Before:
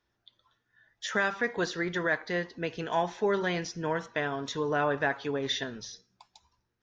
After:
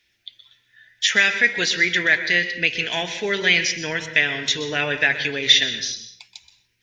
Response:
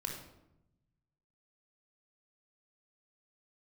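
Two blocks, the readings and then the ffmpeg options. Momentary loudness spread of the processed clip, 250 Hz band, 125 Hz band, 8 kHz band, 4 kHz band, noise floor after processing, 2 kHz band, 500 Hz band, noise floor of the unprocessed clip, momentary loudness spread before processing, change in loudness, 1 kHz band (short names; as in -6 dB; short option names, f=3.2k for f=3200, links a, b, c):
9 LU, +2.5 dB, +3.0 dB, n/a, +18.5 dB, -67 dBFS, +14.0 dB, +1.5 dB, -79 dBFS, 8 LU, +11.5 dB, -1.0 dB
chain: -filter_complex "[0:a]highshelf=f=1.6k:t=q:w=3:g=12.5,asplit=2[a][b];[1:a]atrim=start_sample=2205,afade=t=out:st=0.21:d=0.01,atrim=end_sample=9702,adelay=125[c];[b][c]afir=irnorm=-1:irlink=0,volume=-11dB[d];[a][d]amix=inputs=2:normalize=0,volume=2.5dB"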